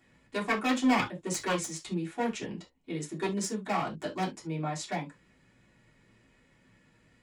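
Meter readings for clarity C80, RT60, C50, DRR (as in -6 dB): 32.0 dB, not exponential, 14.5 dB, -7.5 dB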